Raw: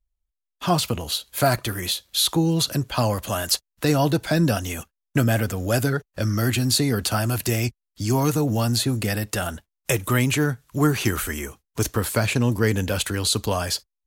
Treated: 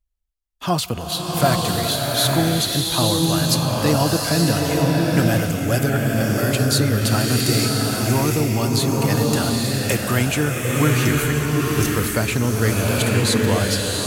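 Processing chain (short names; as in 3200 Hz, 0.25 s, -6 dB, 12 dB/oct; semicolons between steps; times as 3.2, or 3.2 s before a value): bloom reverb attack 0.88 s, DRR -2 dB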